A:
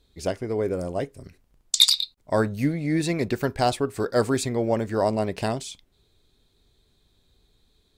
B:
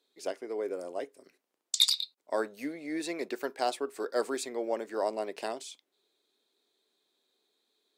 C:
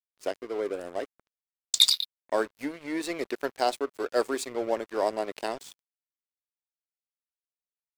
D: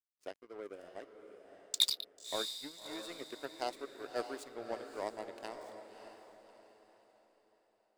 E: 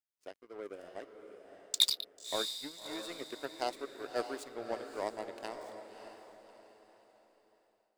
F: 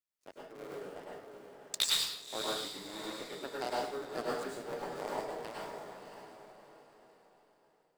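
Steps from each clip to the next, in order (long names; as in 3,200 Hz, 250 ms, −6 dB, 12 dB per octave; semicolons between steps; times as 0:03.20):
high-pass filter 310 Hz 24 dB per octave; level −7.5 dB
dead-zone distortion −45 dBFS; level +5 dB
power curve on the samples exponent 1.4; feedback delay with all-pass diffusion 600 ms, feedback 40%, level −8 dB; level −7 dB
automatic gain control gain up to 6 dB; level −3.5 dB
sub-harmonics by changed cycles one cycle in 3, muted; dense smooth reverb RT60 0.66 s, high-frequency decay 0.75×, pre-delay 90 ms, DRR −4.5 dB; level −3.5 dB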